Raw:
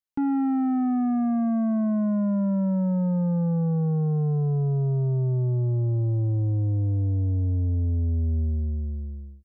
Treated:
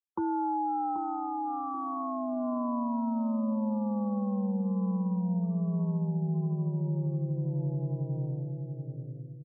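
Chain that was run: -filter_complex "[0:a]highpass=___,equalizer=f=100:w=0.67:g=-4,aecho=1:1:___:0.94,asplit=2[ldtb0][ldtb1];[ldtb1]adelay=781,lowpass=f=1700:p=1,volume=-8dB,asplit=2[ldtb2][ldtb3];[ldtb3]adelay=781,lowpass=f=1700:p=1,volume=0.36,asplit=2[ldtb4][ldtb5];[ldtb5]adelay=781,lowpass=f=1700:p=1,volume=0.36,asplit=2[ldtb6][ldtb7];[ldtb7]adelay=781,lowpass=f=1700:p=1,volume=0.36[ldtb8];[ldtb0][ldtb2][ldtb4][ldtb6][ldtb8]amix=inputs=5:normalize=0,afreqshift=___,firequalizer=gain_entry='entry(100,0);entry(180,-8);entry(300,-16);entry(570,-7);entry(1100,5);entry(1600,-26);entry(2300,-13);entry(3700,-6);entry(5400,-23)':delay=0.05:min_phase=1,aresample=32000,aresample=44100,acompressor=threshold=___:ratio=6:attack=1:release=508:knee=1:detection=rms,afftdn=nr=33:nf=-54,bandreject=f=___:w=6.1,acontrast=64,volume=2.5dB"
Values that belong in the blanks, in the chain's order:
59, 6.5, 50, -34dB, 710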